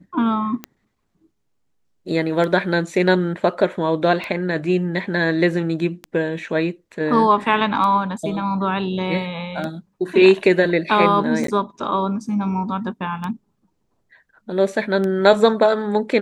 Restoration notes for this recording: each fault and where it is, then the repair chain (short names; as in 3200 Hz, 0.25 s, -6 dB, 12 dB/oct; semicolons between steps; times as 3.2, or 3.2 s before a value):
tick 33 1/3 rpm -14 dBFS
11.47–11.48 gap 13 ms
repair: de-click; interpolate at 11.47, 13 ms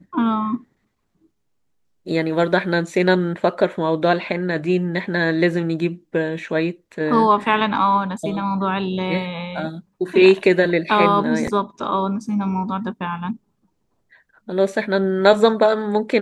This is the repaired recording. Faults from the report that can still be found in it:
none